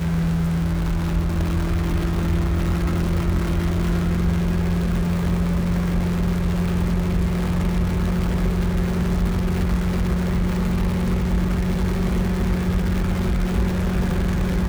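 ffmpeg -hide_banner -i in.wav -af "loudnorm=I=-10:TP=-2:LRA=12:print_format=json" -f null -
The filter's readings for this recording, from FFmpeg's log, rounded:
"input_i" : "-22.4",
"input_tp" : "-10.0",
"input_lra" : "0.4",
"input_thresh" : "-32.4",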